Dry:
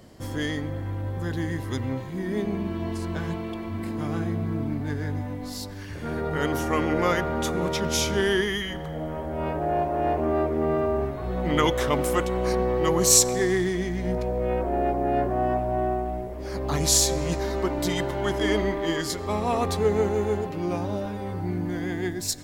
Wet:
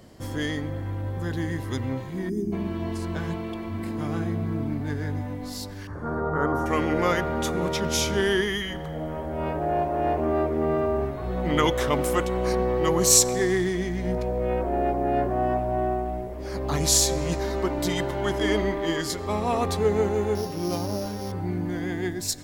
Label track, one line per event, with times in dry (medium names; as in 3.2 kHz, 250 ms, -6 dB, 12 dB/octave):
2.290000	2.530000	time-frequency box 410–4800 Hz -23 dB
5.870000	6.660000	resonant high shelf 1.8 kHz -14 dB, Q 3
20.350000	21.320000	sorted samples in blocks of 8 samples